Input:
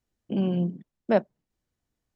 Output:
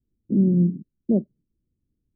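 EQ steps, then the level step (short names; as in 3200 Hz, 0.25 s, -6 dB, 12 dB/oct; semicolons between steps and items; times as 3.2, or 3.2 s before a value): inverse Chebyshev low-pass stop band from 1600 Hz, stop band 70 dB; +7.5 dB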